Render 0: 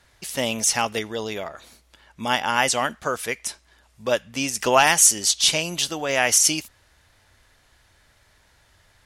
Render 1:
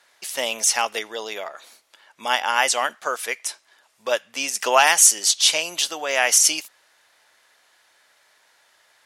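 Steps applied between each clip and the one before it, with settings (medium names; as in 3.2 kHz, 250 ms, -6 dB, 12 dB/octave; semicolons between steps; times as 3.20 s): high-pass 530 Hz 12 dB/octave; trim +1.5 dB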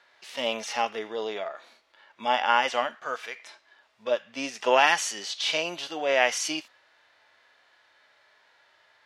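harmonic-percussive split percussive -16 dB; FFT filter 1.8 kHz 0 dB, 4.1 kHz -3 dB, 9.7 kHz -20 dB; trim +3.5 dB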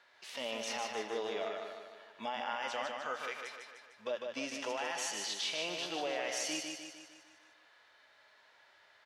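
compression 1.5:1, threshold -34 dBFS, peak gain reduction 7 dB; peak limiter -23.5 dBFS, peak gain reduction 10.5 dB; on a send: feedback delay 151 ms, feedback 53%, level -4.5 dB; on the sum: trim -4 dB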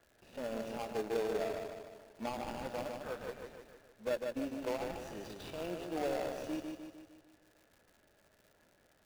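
median filter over 41 samples; crackle 180 per s -57 dBFS; in parallel at -10 dB: sample-rate reducer 2 kHz; on the sum: trim +3.5 dB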